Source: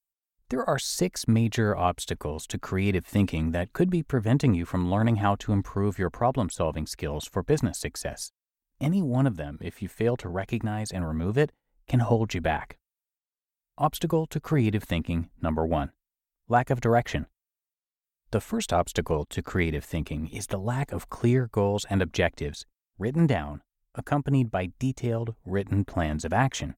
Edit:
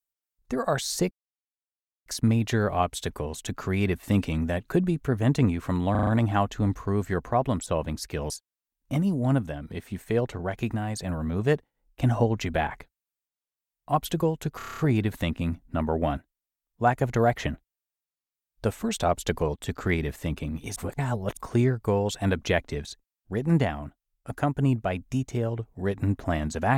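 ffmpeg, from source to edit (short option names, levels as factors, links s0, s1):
-filter_complex "[0:a]asplit=16[s0][s1][s2][s3][s4][s5][s6][s7][s8][s9][s10][s11][s12][s13][s14][s15];[s0]atrim=end=1.11,asetpts=PTS-STARTPTS,afade=t=out:st=1.106:d=0.004:c=hsin,apad=pad_dur=0.95[s16];[s1]atrim=start=1.11:end=5.002,asetpts=PTS-STARTPTS,afade=t=in:d=0.004:c=hsin[s17];[s2]atrim=start=4.958:end=5.002[s18];[s3]atrim=start=4.958:end=5.002[s19];[s4]atrim=start=4.958:end=5.002[s20];[s5]atrim=start=4.958:end=7.192[s21];[s6]atrim=start=8.198:end=14.502[s22];[s7]atrim=start=14.468:end=14.502[s23];[s8]atrim=start=14.468:end=14.502[s24];[s9]atrim=start=14.468:end=14.502[s25];[s10]atrim=start=14.468:end=14.502[s26];[s11]atrim=start=14.468:end=14.502[s27];[s12]atrim=start=14.468:end=14.502[s28];[s13]atrim=start=14.468:end=20.452[s29];[s14]atrim=start=20.448:end=21.062,asetpts=PTS-STARTPTS,areverse[s30];[s15]atrim=start=21.058[s31];[s16][s17]concat=n=2:v=0:a=1[s32];[s32][s18]acrossfade=d=0.004:c1=hsin:c2=hsin[s33];[s33][s19]acrossfade=d=0.004:c1=hsin:c2=hsin[s34];[s34][s20]acrossfade=d=0.004:c1=hsin:c2=hsin[s35];[s35][s21]acrossfade=d=0.004:c1=hsin:c2=hsin[s36];[s36][s22]acrossfade=d=0.004:c1=hsin:c2=hsin[s37];[s37][s23]acrossfade=d=0.004:c1=hsin:c2=hsin[s38];[s38][s24]acrossfade=d=0.004:c1=hsin:c2=hsin[s39];[s39][s25]acrossfade=d=0.004:c1=hsin:c2=hsin[s40];[s40][s26]acrossfade=d=0.004:c1=hsin:c2=hsin[s41];[s41][s27]acrossfade=d=0.004:c1=hsin:c2=hsin[s42];[s42][s28]acrossfade=d=0.004:c1=hsin:c2=hsin[s43];[s43][s29]acrossfade=d=0.004:c1=hsin:c2=hsin[s44];[s44][s30]acrossfade=d=0.004:c1=hsin:c2=hsin[s45];[s45][s31]acrossfade=d=0.004:c1=hsin:c2=hsin"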